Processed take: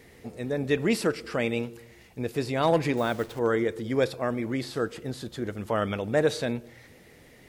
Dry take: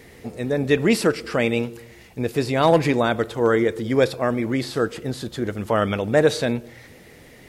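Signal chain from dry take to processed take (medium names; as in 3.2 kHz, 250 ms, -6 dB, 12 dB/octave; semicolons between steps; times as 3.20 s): 2.97–3.39 s: send-on-delta sampling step -34.5 dBFS; trim -6.5 dB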